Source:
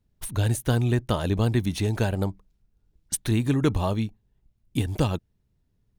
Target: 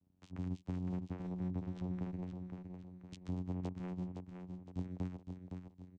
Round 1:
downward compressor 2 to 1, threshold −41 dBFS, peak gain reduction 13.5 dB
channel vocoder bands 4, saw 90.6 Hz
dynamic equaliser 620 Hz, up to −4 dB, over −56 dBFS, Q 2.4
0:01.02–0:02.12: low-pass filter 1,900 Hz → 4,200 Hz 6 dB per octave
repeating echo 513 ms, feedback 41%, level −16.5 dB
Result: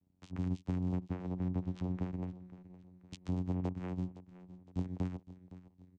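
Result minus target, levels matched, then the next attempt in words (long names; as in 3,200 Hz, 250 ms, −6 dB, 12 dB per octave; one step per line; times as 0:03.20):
echo-to-direct −10.5 dB; downward compressor: peak gain reduction −5 dB
downward compressor 2 to 1, threshold −50.5 dBFS, peak gain reduction 18 dB
channel vocoder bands 4, saw 90.6 Hz
dynamic equaliser 620 Hz, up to −4 dB, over −56 dBFS, Q 2.4
0:01.02–0:02.12: low-pass filter 1,900 Hz → 4,200 Hz 6 dB per octave
repeating echo 513 ms, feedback 41%, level −6 dB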